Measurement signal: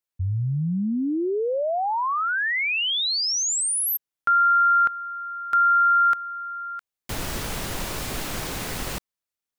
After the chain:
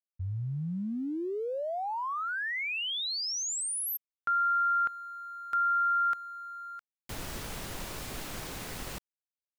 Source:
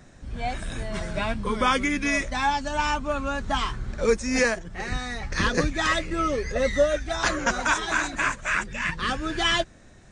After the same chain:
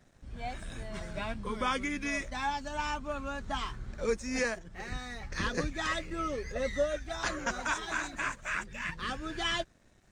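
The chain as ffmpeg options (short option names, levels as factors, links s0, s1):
-af "aeval=exprs='sgn(val(0))*max(abs(val(0))-0.0015,0)':c=same,volume=0.355"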